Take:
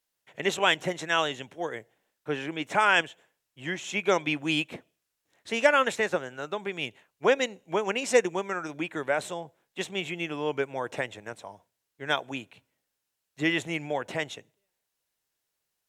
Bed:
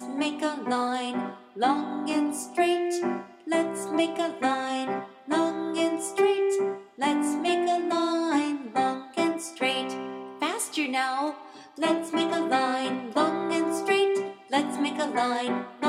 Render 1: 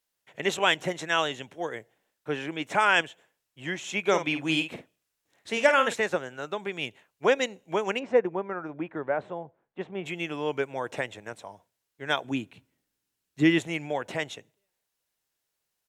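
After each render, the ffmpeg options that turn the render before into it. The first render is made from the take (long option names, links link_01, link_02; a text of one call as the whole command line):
ffmpeg -i in.wav -filter_complex "[0:a]asplit=3[link_01][link_02][link_03];[link_01]afade=type=out:start_time=4.05:duration=0.02[link_04];[link_02]asplit=2[link_05][link_06];[link_06]adelay=50,volume=-9dB[link_07];[link_05][link_07]amix=inputs=2:normalize=0,afade=type=in:start_time=4.05:duration=0.02,afade=type=out:start_time=5.92:duration=0.02[link_08];[link_03]afade=type=in:start_time=5.92:duration=0.02[link_09];[link_04][link_08][link_09]amix=inputs=3:normalize=0,asplit=3[link_10][link_11][link_12];[link_10]afade=type=out:start_time=7.98:duration=0.02[link_13];[link_11]lowpass=1300,afade=type=in:start_time=7.98:duration=0.02,afade=type=out:start_time=10.05:duration=0.02[link_14];[link_12]afade=type=in:start_time=10.05:duration=0.02[link_15];[link_13][link_14][link_15]amix=inputs=3:normalize=0,asettb=1/sr,asplit=3[link_16][link_17][link_18];[link_16]atrim=end=12.244[link_19];[link_17]atrim=start=12.24:end=13.59,asetpts=PTS-STARTPTS,afade=type=in:duration=0.004:curve=qsin,afade=type=out:start_time=1.346:duration=0.004:curve=qsin,lowshelf=frequency=410:width_type=q:width=1.5:gain=6.5[link_20];[link_18]atrim=start=13.586[link_21];[link_19][link_20]acrossfade=duration=0.004:curve1=hsin:curve2=qsin[link_22];[link_22][link_21]acrossfade=duration=0.004:curve1=qsin:curve2=hsin" out.wav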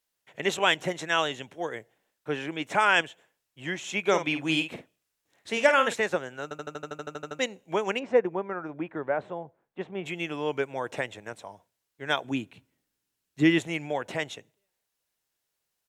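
ffmpeg -i in.wav -filter_complex "[0:a]asplit=13[link_01][link_02][link_03][link_04][link_05][link_06][link_07][link_08][link_09][link_10][link_11][link_12][link_13];[link_01]atrim=end=6.512[link_14];[link_02]atrim=start=6.428:end=6.512[link_15];[link_03]atrim=start=6.428:end=6.512[link_16];[link_04]atrim=start=6.428:end=6.512[link_17];[link_05]atrim=start=6.428:end=6.512[link_18];[link_06]atrim=start=6.428:end=6.512[link_19];[link_07]atrim=start=6.428:end=6.512[link_20];[link_08]atrim=start=6.428:end=6.512[link_21];[link_09]atrim=start=6.428:end=6.512[link_22];[link_10]atrim=start=6.428:end=6.512[link_23];[link_11]atrim=start=6.428:end=6.512[link_24];[link_12]atrim=start=6.428:end=6.512[link_25];[link_13]atrim=start=7.388[link_26];[link_14][link_15]acrossfade=duration=0.004:curve1=hsin:curve2=hsin[link_27];[link_27][link_16]acrossfade=duration=0.004:curve1=hsin:curve2=hsin[link_28];[link_28][link_17]acrossfade=duration=0.004:curve1=hsin:curve2=hsin[link_29];[link_29][link_18]acrossfade=duration=0.004:curve1=hsin:curve2=hsin[link_30];[link_30][link_19]acrossfade=duration=0.004:curve1=hsin:curve2=hsin[link_31];[link_31][link_20]acrossfade=duration=0.004:curve1=hsin:curve2=hsin[link_32];[link_32][link_21]acrossfade=duration=0.004:curve1=hsin:curve2=hsin[link_33];[link_33][link_22]acrossfade=duration=0.004:curve1=hsin:curve2=hsin[link_34];[link_34][link_23]acrossfade=duration=0.004:curve1=hsin:curve2=hsin[link_35];[link_35][link_24]acrossfade=duration=0.004:curve1=hsin:curve2=hsin[link_36];[link_36][link_25]acrossfade=duration=0.004:curve1=hsin:curve2=hsin[link_37];[link_37][link_26]acrossfade=duration=0.004:curve1=hsin:curve2=hsin" out.wav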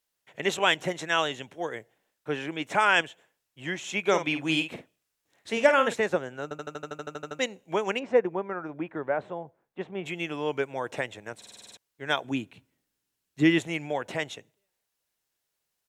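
ffmpeg -i in.wav -filter_complex "[0:a]asettb=1/sr,asplit=3[link_01][link_02][link_03];[link_01]atrim=end=5.534[link_04];[link_02]atrim=start=5.53:end=6.59,asetpts=PTS-STARTPTS,afade=type=in:duration=0.004:curve=qsin,afade=type=out:start_time=1.056:duration=0.004:curve=qsin,tiltshelf=frequency=970:gain=3[link_05];[link_03]atrim=start=6.586[link_06];[link_04][link_05]acrossfade=duration=0.004:curve1=hsin:curve2=qsin[link_07];[link_07][link_06]acrossfade=duration=0.004:curve1=qsin:curve2=hsin,asplit=9[link_08][link_09][link_10][link_11][link_12][link_13][link_14][link_15][link_16];[link_08]atrim=end=11.422[link_17];[link_09]atrim=start=11.368:end=11.422[link_18];[link_10]atrim=start=11.368:end=11.422[link_19];[link_11]atrim=start=11.368:end=11.422[link_20];[link_12]atrim=start=11.368:end=11.422[link_21];[link_13]atrim=start=11.368:end=11.422[link_22];[link_14]atrim=start=11.368:end=11.422[link_23];[link_15]atrim=start=11.368:end=11.422[link_24];[link_16]atrim=start=11.768[link_25];[link_17][link_18]acrossfade=duration=0.004:curve1=hsin:curve2=hsin[link_26];[link_26][link_19]acrossfade=duration=0.004:curve1=hsin:curve2=hsin[link_27];[link_27][link_20]acrossfade=duration=0.004:curve1=hsin:curve2=hsin[link_28];[link_28][link_21]acrossfade=duration=0.004:curve1=hsin:curve2=hsin[link_29];[link_29][link_22]acrossfade=duration=0.004:curve1=hsin:curve2=hsin[link_30];[link_30][link_23]acrossfade=duration=0.004:curve1=hsin:curve2=hsin[link_31];[link_31][link_24]acrossfade=duration=0.004:curve1=hsin:curve2=hsin[link_32];[link_32][link_25]acrossfade=duration=0.004:curve1=hsin:curve2=hsin" out.wav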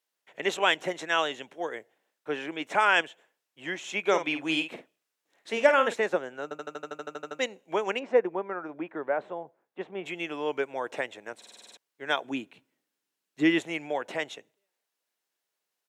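ffmpeg -i in.wav -af "highpass=270,highshelf=frequency=4800:gain=-5" out.wav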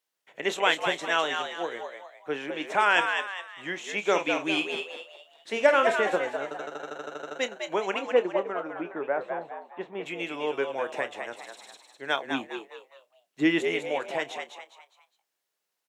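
ffmpeg -i in.wav -filter_complex "[0:a]asplit=2[link_01][link_02];[link_02]adelay=29,volume=-13.5dB[link_03];[link_01][link_03]amix=inputs=2:normalize=0,asplit=5[link_04][link_05][link_06][link_07][link_08];[link_05]adelay=204,afreqshift=93,volume=-6dB[link_09];[link_06]adelay=408,afreqshift=186,volume=-14.6dB[link_10];[link_07]adelay=612,afreqshift=279,volume=-23.3dB[link_11];[link_08]adelay=816,afreqshift=372,volume=-31.9dB[link_12];[link_04][link_09][link_10][link_11][link_12]amix=inputs=5:normalize=0" out.wav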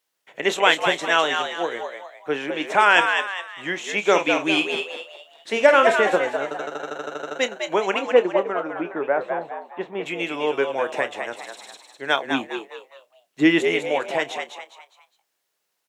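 ffmpeg -i in.wav -af "volume=6.5dB,alimiter=limit=-1dB:level=0:latency=1" out.wav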